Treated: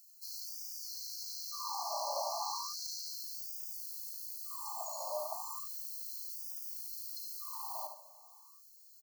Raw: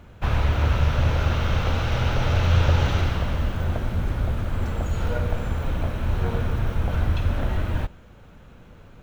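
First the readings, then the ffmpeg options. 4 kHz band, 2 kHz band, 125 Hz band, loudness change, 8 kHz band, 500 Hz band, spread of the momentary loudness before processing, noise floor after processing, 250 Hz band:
-7.5 dB, under -40 dB, under -40 dB, -15.0 dB, n/a, -14.5 dB, 7 LU, -59 dBFS, under -40 dB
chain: -filter_complex "[0:a]acrossover=split=5600[a][b];[b]acompressor=threshold=-55dB:ratio=4:attack=1:release=60[c];[a][c]amix=inputs=2:normalize=0,aemphasis=mode=production:type=75fm,afftfilt=real='re*(1-between(b*sr/4096,1200,4100))':imag='im*(1-between(b*sr/4096,1200,4100))':win_size=4096:overlap=0.75,aecho=1:1:74|148|222|296:0.447|0.17|0.0645|0.0245,afftfilt=real='re*gte(b*sr/1024,550*pow(4700/550,0.5+0.5*sin(2*PI*0.34*pts/sr)))':imag='im*gte(b*sr/1024,550*pow(4700/550,0.5+0.5*sin(2*PI*0.34*pts/sr)))':win_size=1024:overlap=0.75,volume=-3.5dB"

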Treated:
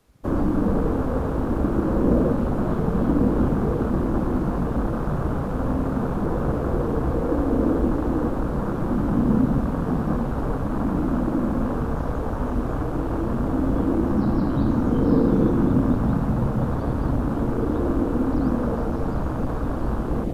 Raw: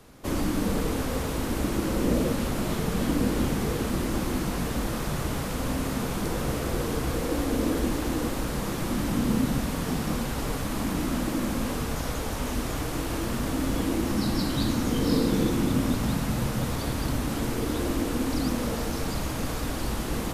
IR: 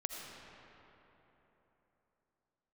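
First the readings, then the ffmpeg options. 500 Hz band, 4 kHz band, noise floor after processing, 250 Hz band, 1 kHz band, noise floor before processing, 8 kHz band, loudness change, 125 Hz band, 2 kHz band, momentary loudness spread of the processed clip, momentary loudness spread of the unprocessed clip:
+5.5 dB, under -15 dB, -26 dBFS, +5.5 dB, +4.0 dB, -31 dBFS, under -15 dB, +4.5 dB, +5.5 dB, -3.5 dB, 6 LU, 5 LU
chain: -filter_complex "[0:a]acrossover=split=3100[a][b];[b]acompressor=threshold=-46dB:ratio=4:attack=1:release=60[c];[a][c]amix=inputs=2:normalize=0,acrusher=bits=8:mode=log:mix=0:aa=0.000001,afwtdn=0.0251,volume=5.5dB"

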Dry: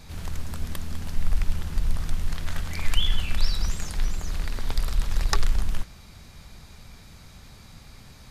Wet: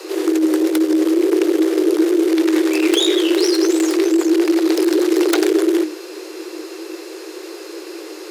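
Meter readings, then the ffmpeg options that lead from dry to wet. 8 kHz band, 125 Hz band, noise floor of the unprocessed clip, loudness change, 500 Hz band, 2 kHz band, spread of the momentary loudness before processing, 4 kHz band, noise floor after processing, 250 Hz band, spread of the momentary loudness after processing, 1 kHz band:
+11.5 dB, under -30 dB, -48 dBFS, +15.0 dB, +30.5 dB, +10.5 dB, 21 LU, +10.0 dB, -34 dBFS, +28.5 dB, 17 LU, +9.0 dB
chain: -af "aeval=exprs='0.631*sin(PI/2*7.94*val(0)/0.631)':c=same,afreqshift=310,volume=-8dB"

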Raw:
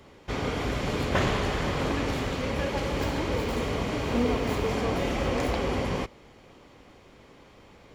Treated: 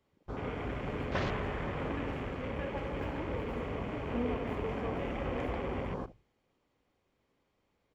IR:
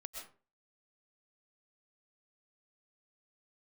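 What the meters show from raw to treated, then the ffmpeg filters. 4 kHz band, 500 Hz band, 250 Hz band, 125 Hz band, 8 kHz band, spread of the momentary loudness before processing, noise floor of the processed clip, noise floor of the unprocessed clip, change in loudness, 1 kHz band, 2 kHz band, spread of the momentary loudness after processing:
-14.5 dB, -8.0 dB, -8.0 dB, -8.0 dB, under -20 dB, 4 LU, -78 dBFS, -54 dBFS, -8.0 dB, -8.0 dB, -9.0 dB, 4 LU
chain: -af "aecho=1:1:78|156|234|312:0.178|0.0711|0.0285|0.0114,afwtdn=0.0158,volume=-8dB"

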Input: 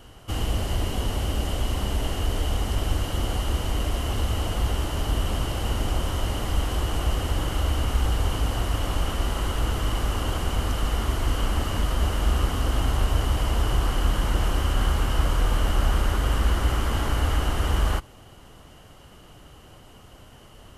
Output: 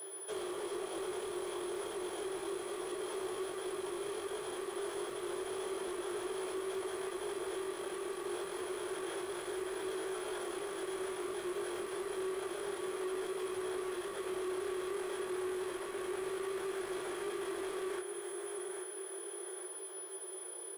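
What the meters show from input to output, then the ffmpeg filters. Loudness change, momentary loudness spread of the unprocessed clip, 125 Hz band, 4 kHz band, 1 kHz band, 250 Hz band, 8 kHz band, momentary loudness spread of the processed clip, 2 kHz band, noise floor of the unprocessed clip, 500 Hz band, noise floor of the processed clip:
-13.5 dB, 3 LU, -38.0 dB, -15.5 dB, -12.5 dB, -8.5 dB, -7.0 dB, 3 LU, -11.0 dB, -49 dBFS, -2.0 dB, -45 dBFS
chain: -filter_complex "[0:a]aeval=exprs='val(0)+0.00398*(sin(2*PI*60*n/s)+sin(2*PI*2*60*n/s)/2+sin(2*PI*3*60*n/s)/3+sin(2*PI*4*60*n/s)/4+sin(2*PI*5*60*n/s)/5)':c=same,highshelf=f=8.4k:g=-8.5,afreqshift=330,aeval=exprs='val(0)+0.02*sin(2*PI*9900*n/s)':c=same,asplit=2[a][b];[b]aecho=0:1:831|1662|2493|3324|4155:0.211|0.101|0.0487|0.0234|0.0112[c];[a][c]amix=inputs=2:normalize=0,acompressor=threshold=-35dB:ratio=2,asoftclip=type=tanh:threshold=-36dB,flanger=delay=18.5:depth=3.9:speed=0.3,bass=f=250:g=-3,treble=f=4k:g=-1,acrossover=split=9200[d][e];[e]acompressor=threshold=-59dB:ratio=4:attack=1:release=60[f];[d][f]amix=inputs=2:normalize=0,volume=2.5dB"

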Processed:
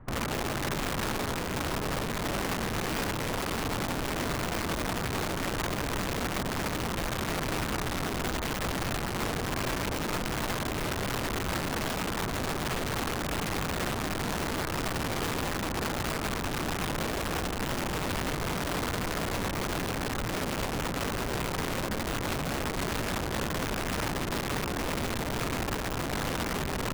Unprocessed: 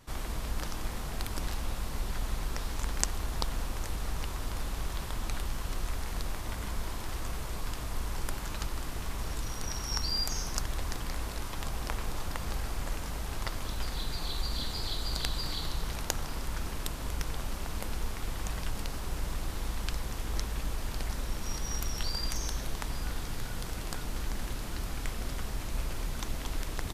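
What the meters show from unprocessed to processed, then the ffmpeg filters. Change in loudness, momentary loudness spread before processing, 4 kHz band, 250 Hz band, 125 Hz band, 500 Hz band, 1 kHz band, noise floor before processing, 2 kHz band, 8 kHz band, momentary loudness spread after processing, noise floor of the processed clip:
+5.5 dB, 5 LU, +3.0 dB, +10.5 dB, +3.5 dB, +11.5 dB, +9.0 dB, -38 dBFS, +10.0 dB, +2.5 dB, 1 LU, -33 dBFS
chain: -filter_complex "[0:a]lowpass=f=1.7k:w=0.5412,lowpass=f=1.7k:w=1.3066,acrossover=split=270[a][b];[a]acontrast=47[c];[c][b]amix=inputs=2:normalize=0,aeval=exprs='(mod(35.5*val(0)+1,2)-1)/35.5':c=same,volume=4.5dB"

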